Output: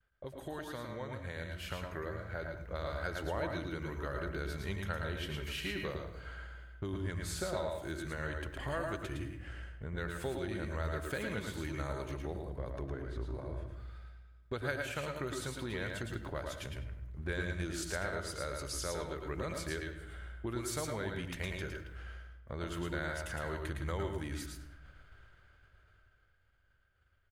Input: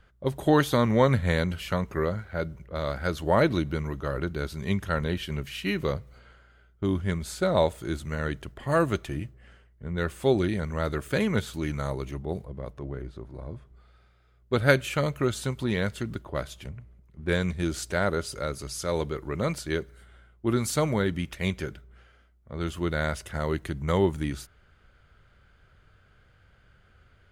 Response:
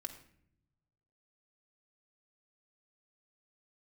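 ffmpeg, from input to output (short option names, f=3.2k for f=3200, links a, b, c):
-filter_complex "[0:a]equalizer=f=200:w=1.1:g=-7,acompressor=threshold=-43dB:ratio=4,equalizer=f=1.6k:w=7.2:g=5,dynaudnorm=f=230:g=17:m=5.5dB,agate=range=-33dB:threshold=-48dB:ratio=3:detection=peak,asplit=2[a][b];[b]adelay=100,lowpass=f=3.4k:p=1,volume=-12dB,asplit=2[c][d];[d]adelay=100,lowpass=f=3.4k:p=1,volume=0.46,asplit=2[e][f];[f]adelay=100,lowpass=f=3.4k:p=1,volume=0.46,asplit=2[g][h];[h]adelay=100,lowpass=f=3.4k:p=1,volume=0.46,asplit=2[i][j];[j]adelay=100,lowpass=f=3.4k:p=1,volume=0.46[k];[a][c][e][g][i][k]amix=inputs=6:normalize=0,asplit=2[l][m];[1:a]atrim=start_sample=2205,adelay=111[n];[m][n]afir=irnorm=-1:irlink=0,volume=-0.5dB[o];[l][o]amix=inputs=2:normalize=0,volume=-2dB"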